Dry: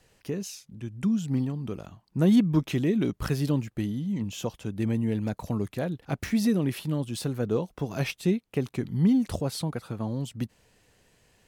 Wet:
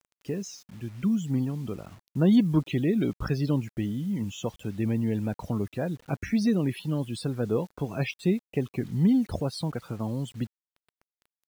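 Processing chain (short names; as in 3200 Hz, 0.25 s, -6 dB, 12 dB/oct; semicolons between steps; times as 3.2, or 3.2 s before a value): loudest bins only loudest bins 64; bit-crush 9-bit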